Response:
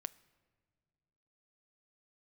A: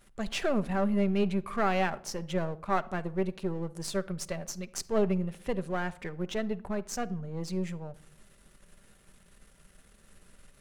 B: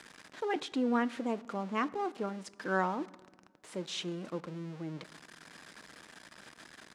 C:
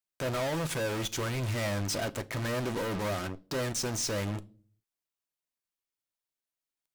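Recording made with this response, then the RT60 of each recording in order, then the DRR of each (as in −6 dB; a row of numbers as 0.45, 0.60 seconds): B; 0.70 s, non-exponential decay, 0.40 s; 11.0, 14.5, 9.5 decibels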